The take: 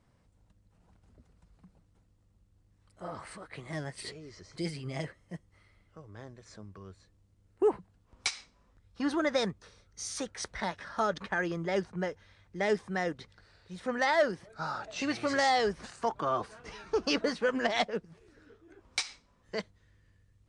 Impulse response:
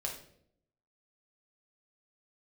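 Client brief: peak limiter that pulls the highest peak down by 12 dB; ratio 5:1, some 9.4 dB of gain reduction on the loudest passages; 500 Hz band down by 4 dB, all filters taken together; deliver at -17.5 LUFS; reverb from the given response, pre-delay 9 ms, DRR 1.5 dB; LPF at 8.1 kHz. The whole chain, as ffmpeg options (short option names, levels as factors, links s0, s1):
-filter_complex "[0:a]lowpass=8100,equalizer=f=500:t=o:g=-5,acompressor=threshold=0.0178:ratio=5,alimiter=level_in=2.37:limit=0.0631:level=0:latency=1,volume=0.422,asplit=2[s0][s1];[1:a]atrim=start_sample=2205,adelay=9[s2];[s1][s2]afir=irnorm=-1:irlink=0,volume=0.75[s3];[s0][s3]amix=inputs=2:normalize=0,volume=15.8"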